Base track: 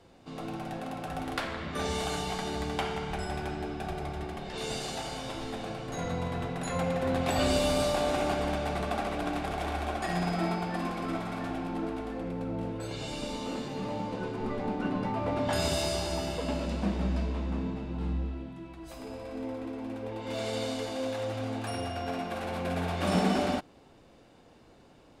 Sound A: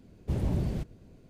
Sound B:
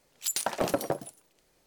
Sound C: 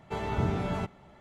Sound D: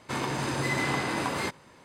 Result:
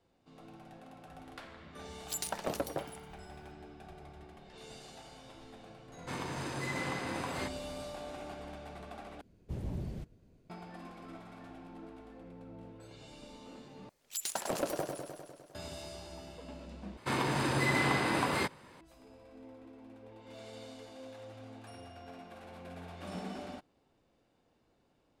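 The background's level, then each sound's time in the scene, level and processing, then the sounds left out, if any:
base track -15.5 dB
1.86 add B -7.5 dB
5.98 add D -9 dB
9.21 replace with A -9.5 dB
13.89 replace with B -7.5 dB + warbling echo 0.101 s, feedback 70%, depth 100 cents, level -5.5 dB
16.97 replace with D -1 dB + bell 6400 Hz -6 dB 0.41 oct
not used: C

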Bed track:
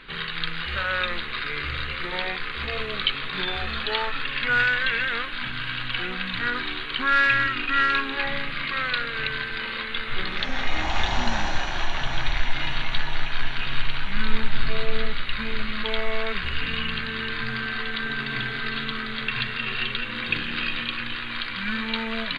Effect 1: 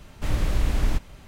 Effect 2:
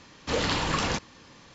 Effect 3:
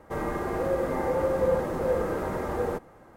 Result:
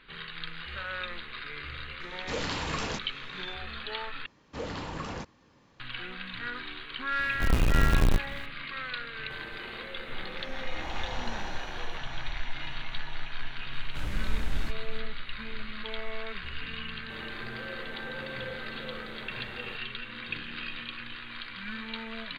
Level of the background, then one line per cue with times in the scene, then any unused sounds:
bed track -10.5 dB
2 add 2 -6.5 dB
4.26 replace with 2 -8 dB + high shelf 2300 Hz -10 dB
7.19 add 1 -5 dB + half-waves squared off
9.2 add 3 -10 dB + compressor 2.5:1, threshold -38 dBFS
13.73 add 1 -10.5 dB
16.99 add 3 -17.5 dB

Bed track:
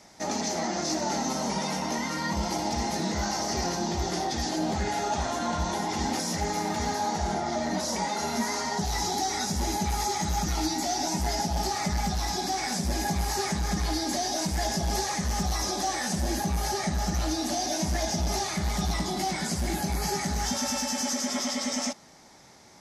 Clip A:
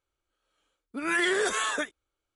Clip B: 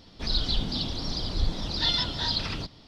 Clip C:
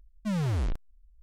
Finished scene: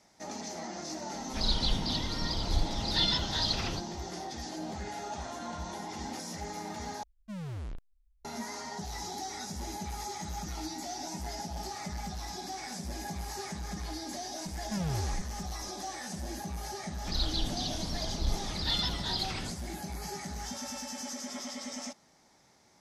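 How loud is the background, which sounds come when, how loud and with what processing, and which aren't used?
bed track -10.5 dB
1.14 add B -2.5 dB
7.03 replace with C -11 dB
14.46 add C -1 dB + compressor 3:1, threshold -32 dBFS
16.85 add B -5.5 dB
not used: A

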